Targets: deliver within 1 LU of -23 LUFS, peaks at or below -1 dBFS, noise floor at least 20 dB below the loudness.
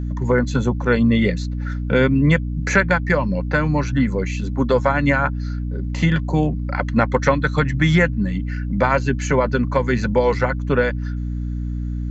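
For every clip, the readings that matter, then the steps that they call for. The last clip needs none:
hum 60 Hz; highest harmonic 300 Hz; hum level -22 dBFS; loudness -19.5 LUFS; peak level -3.5 dBFS; loudness target -23.0 LUFS
-> de-hum 60 Hz, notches 5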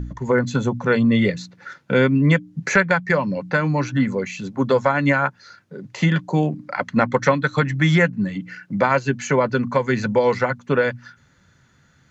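hum not found; loudness -20.0 LUFS; peak level -4.0 dBFS; loudness target -23.0 LUFS
-> trim -3 dB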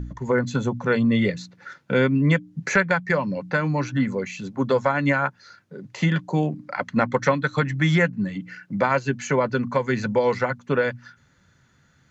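loudness -23.0 LUFS; peak level -7.0 dBFS; noise floor -60 dBFS

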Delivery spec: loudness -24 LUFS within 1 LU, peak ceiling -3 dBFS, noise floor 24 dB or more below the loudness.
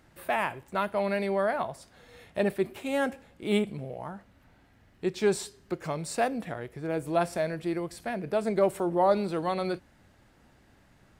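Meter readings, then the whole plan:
loudness -30.0 LUFS; peak level -12.5 dBFS; loudness target -24.0 LUFS
-> trim +6 dB

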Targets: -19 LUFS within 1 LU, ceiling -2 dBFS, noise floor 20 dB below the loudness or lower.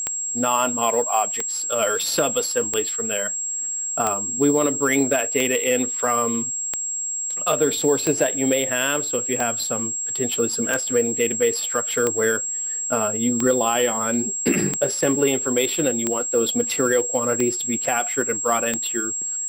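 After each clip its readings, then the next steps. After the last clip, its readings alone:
clicks found 15; steady tone 7.6 kHz; tone level -24 dBFS; loudness -21.0 LUFS; peak level -6.5 dBFS; loudness target -19.0 LUFS
-> de-click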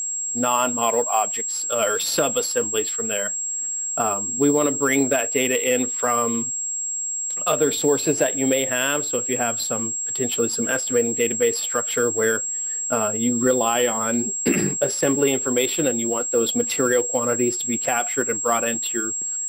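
clicks found 0; steady tone 7.6 kHz; tone level -24 dBFS
-> band-stop 7.6 kHz, Q 30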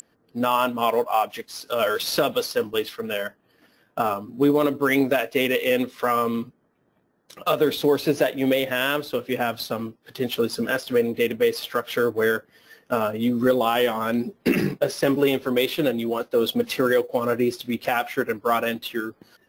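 steady tone not found; loudness -23.5 LUFS; peak level -8.5 dBFS; loudness target -19.0 LUFS
-> trim +4.5 dB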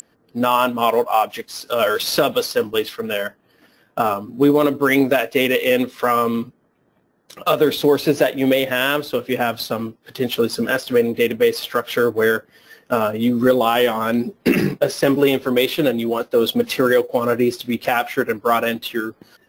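loudness -19.0 LUFS; peak level -4.0 dBFS; noise floor -61 dBFS

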